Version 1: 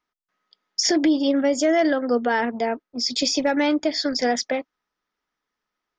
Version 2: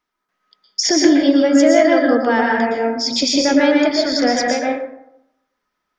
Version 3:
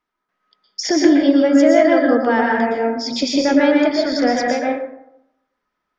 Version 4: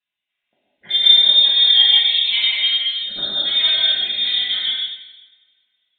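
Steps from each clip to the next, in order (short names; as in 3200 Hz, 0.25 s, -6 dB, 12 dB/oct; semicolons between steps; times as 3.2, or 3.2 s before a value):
plate-style reverb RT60 0.81 s, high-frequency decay 0.45×, pre-delay 0.105 s, DRR -2 dB; gain +3 dB
LPF 2900 Hz 6 dB/oct
notch comb 430 Hz; inverted band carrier 3900 Hz; two-slope reverb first 0.87 s, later 2.4 s, from -25 dB, DRR -6.5 dB; gain -9 dB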